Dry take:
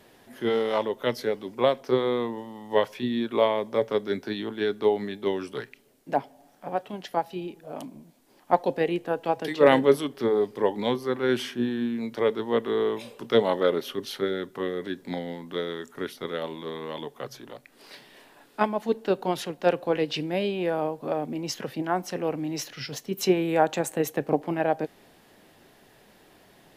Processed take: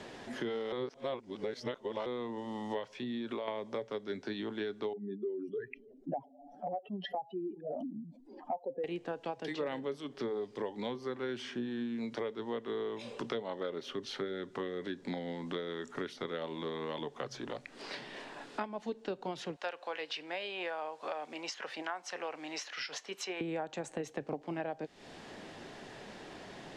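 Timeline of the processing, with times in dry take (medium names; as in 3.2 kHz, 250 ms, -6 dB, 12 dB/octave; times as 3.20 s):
0.72–2.06 s: reverse
2.97–3.48 s: compression, threshold -30 dBFS
4.93–8.84 s: spectral contrast enhancement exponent 2.7
19.56–23.41 s: high-pass 930 Hz
whole clip: compression 5:1, threshold -38 dBFS; low-pass 7.6 kHz 24 dB/octave; three bands compressed up and down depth 40%; trim +2 dB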